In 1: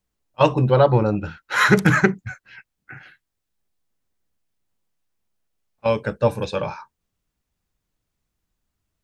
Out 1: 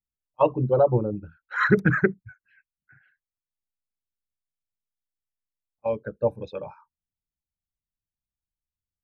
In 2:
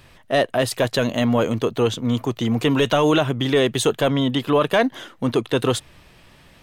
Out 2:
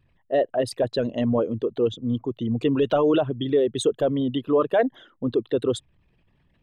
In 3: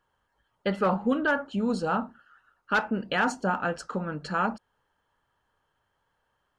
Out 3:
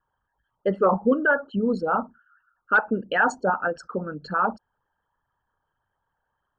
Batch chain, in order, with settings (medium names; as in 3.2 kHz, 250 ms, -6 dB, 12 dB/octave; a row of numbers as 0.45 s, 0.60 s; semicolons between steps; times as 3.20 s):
resonances exaggerated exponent 2; vibrato 0.62 Hz 5.3 cents; upward expansion 1.5:1, over -38 dBFS; normalise loudness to -24 LUFS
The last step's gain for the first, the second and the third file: -3.0 dB, -1.5 dB, +6.0 dB